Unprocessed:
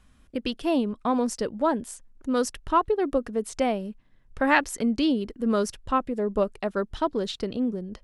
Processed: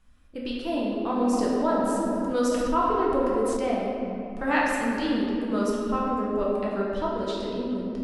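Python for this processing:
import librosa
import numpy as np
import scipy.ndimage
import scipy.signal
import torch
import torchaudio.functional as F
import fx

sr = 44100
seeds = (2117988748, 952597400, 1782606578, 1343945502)

y = fx.room_shoebox(x, sr, seeds[0], volume_m3=120.0, walls='hard', distance_m=0.71)
y = fx.env_flatten(y, sr, amount_pct=50, at=(1.33, 3.57))
y = F.gain(torch.from_numpy(y), -7.5).numpy()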